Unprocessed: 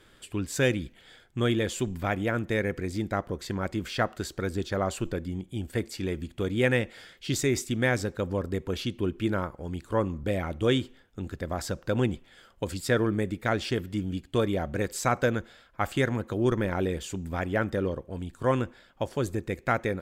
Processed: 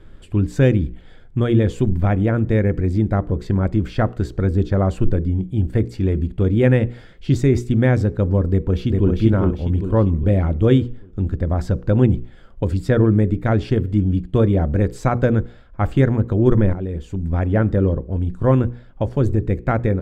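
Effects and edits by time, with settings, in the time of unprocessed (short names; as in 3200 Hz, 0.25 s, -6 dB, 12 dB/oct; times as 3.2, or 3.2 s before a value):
8.5–9.12 echo throw 0.4 s, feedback 45%, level -2.5 dB
16.73–17.51 fade in, from -13.5 dB
whole clip: tilt -4 dB/oct; notches 60/120/180/240/300/360/420/480 Hz; gain +3.5 dB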